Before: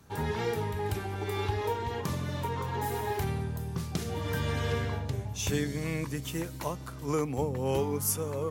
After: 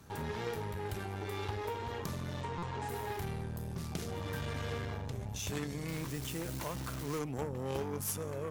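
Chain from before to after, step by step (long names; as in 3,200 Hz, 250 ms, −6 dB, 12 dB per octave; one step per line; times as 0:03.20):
0:02.41–0:02.89: Butterworth low-pass 8,900 Hz 48 dB per octave
in parallel at −1.5 dB: compressor whose output falls as the input rises −41 dBFS, ratio −1
on the sum: harmonic generator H 2 −10 dB, 6 −18 dB, 8 −14 dB, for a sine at −14 dBFS
0:05.88–0:07.19: bit-depth reduction 6 bits, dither none
buffer that repeats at 0:02.58, samples 256, times 7
level −9 dB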